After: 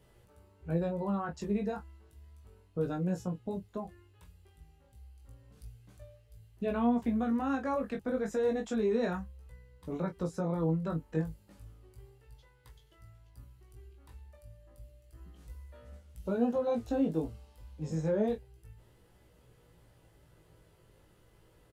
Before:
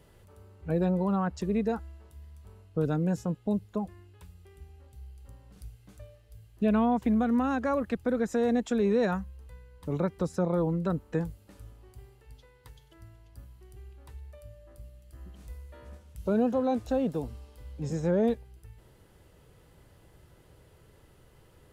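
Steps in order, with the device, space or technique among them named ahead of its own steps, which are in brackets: 16.89–17.3 bell 300 Hz +6 dB; double-tracked vocal (doubler 25 ms -9 dB; chorus 0.31 Hz, delay 16.5 ms, depth 2.8 ms); gain -2 dB

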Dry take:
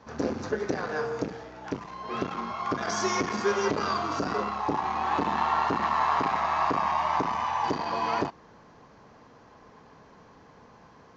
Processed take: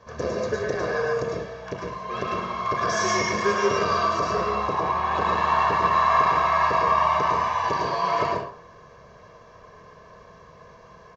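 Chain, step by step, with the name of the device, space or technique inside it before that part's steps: 4.73–5.15 air absorption 61 m; microphone above a desk (comb 1.8 ms, depth 70%; reverb RT60 0.55 s, pre-delay 0.101 s, DRR -1 dB)

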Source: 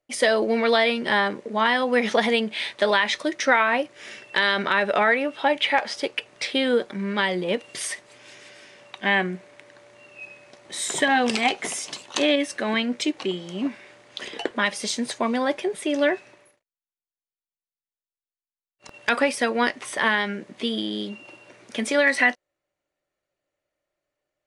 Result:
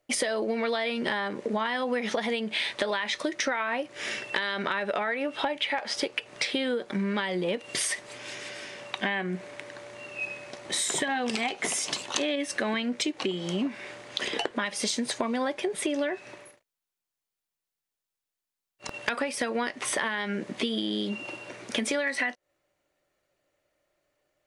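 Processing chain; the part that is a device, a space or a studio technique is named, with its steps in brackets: serial compression, leveller first (compressor 2:1, threshold -26 dBFS, peak gain reduction 7 dB; compressor 6:1, threshold -33 dBFS, peak gain reduction 12.5 dB); gain +7 dB

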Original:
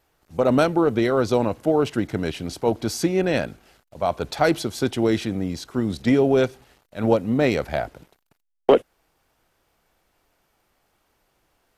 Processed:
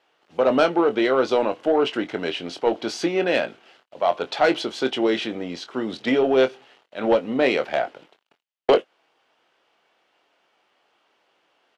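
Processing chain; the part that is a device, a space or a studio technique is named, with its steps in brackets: intercom (BPF 360–4200 Hz; bell 3000 Hz +6.5 dB 0.4 oct; soft clip -11.5 dBFS, distortion -18 dB; doubler 23 ms -10 dB); gain +3 dB

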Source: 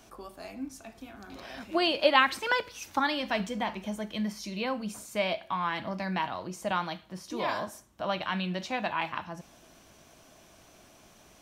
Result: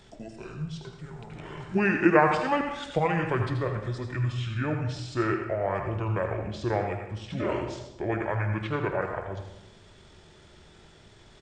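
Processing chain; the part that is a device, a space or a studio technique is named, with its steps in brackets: monster voice (pitch shift -9.5 st; low shelf 100 Hz +6.5 dB; echo 81 ms -9.5 dB; reverb RT60 0.85 s, pre-delay 77 ms, DRR 6.5 dB); gain +1.5 dB

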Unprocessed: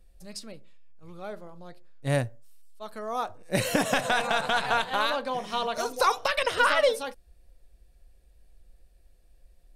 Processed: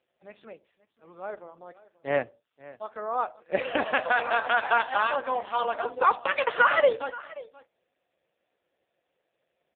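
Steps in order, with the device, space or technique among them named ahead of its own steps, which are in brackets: satellite phone (BPF 400–3200 Hz; echo 0.531 s -19.5 dB; gain +4 dB; AMR-NB 5.15 kbps 8000 Hz)

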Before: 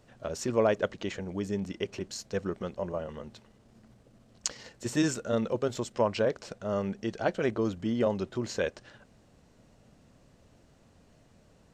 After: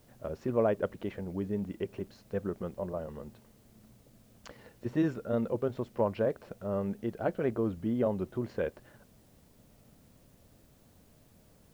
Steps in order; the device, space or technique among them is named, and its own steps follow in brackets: cassette deck with a dirty head (tape spacing loss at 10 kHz 42 dB; wow and flutter; white noise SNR 34 dB)

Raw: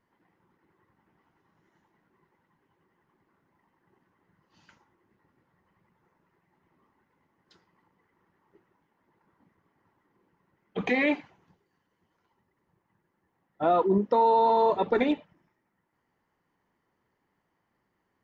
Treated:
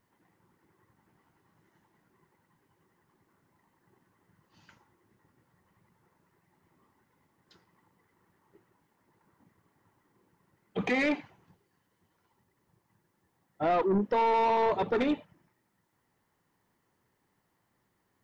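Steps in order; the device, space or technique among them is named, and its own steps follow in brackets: open-reel tape (soft clip -21.5 dBFS, distortion -12 dB; bell 110 Hz +5 dB 0.81 oct; white noise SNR 48 dB)

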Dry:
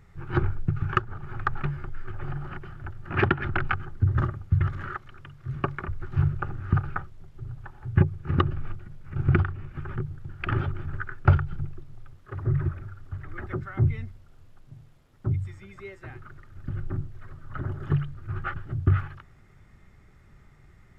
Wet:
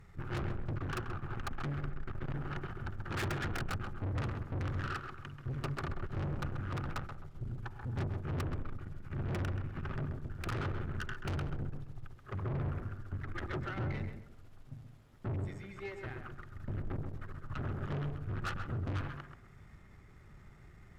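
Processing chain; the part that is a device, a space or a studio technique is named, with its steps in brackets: rockabilly slapback (tube stage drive 36 dB, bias 0.7; tape echo 0.132 s, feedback 35%, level -4 dB, low-pass 1700 Hz); gain +2 dB

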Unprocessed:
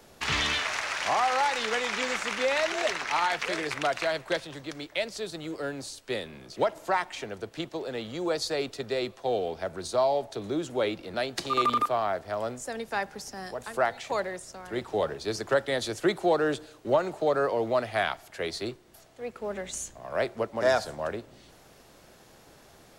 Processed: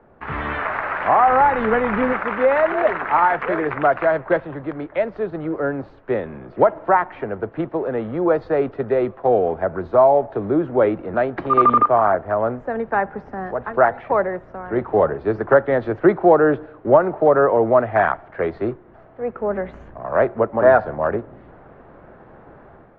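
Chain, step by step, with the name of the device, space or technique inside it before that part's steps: 1.28–2.13 tone controls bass +13 dB, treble -1 dB; action camera in a waterproof case (LPF 1600 Hz 24 dB/oct; AGC gain up to 8.5 dB; gain +3 dB; AAC 48 kbps 48000 Hz)

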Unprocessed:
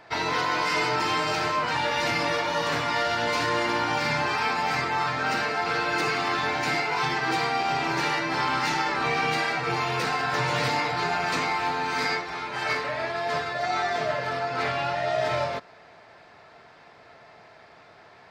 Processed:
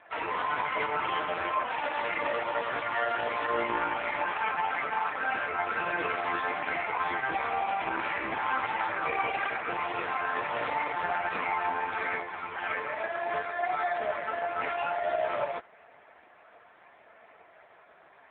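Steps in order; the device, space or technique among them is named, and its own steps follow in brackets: telephone (BPF 300–3200 Hz; AMR-NB 4.75 kbps 8000 Hz)

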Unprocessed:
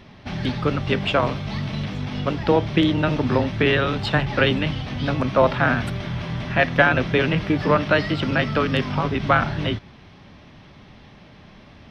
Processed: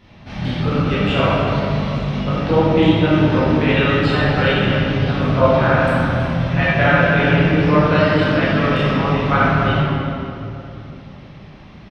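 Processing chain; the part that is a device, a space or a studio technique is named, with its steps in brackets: cave (echo 0.323 s -13.5 dB; reverb RT60 2.9 s, pre-delay 13 ms, DRR -10.5 dB); gain -7 dB

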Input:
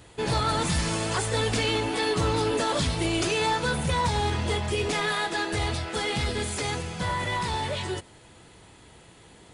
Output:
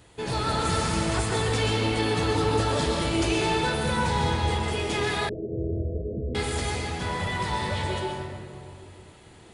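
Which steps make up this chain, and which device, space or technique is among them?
stairwell (reverb RT60 2.3 s, pre-delay 0.114 s, DRR -1.5 dB); 5.29–6.35 steep low-pass 620 Hz 96 dB/oct; gain -3.5 dB

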